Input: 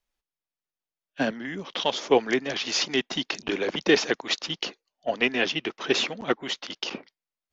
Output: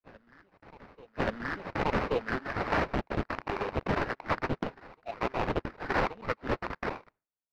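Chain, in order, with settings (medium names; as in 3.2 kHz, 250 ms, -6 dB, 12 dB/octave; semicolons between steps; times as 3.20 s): drifting ripple filter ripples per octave 0.78, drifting +1.2 Hz, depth 11 dB; gate with hold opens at -48 dBFS; tilt EQ +4.5 dB/octave; level rider gain up to 11.5 dB; peak limiter -7.5 dBFS, peak gain reduction 7 dB; sample-rate reducer 3.3 kHz, jitter 20%; distance through air 310 m; on a send: reverse echo 1129 ms -23 dB; on the sum: loudspeaker Doppler distortion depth 0.48 ms; trim -7.5 dB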